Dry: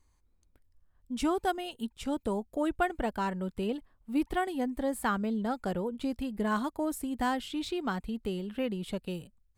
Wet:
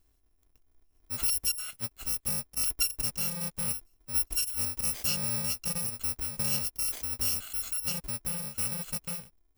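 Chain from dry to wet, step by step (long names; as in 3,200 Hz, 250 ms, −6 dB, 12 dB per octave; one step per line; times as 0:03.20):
samples in bit-reversed order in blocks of 128 samples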